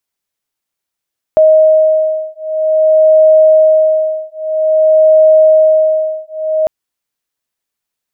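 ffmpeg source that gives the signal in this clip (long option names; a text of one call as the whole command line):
ffmpeg -f lavfi -i "aevalsrc='0.355*(sin(2*PI*627*t)+sin(2*PI*627.51*t))':duration=5.3:sample_rate=44100" out.wav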